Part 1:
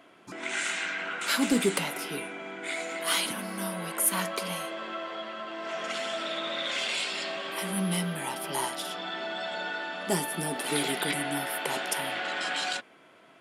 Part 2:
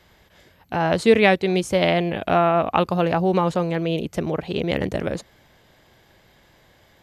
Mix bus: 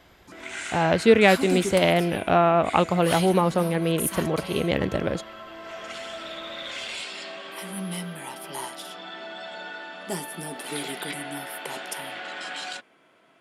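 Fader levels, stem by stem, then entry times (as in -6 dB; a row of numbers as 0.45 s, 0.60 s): -3.5 dB, -1.0 dB; 0.00 s, 0.00 s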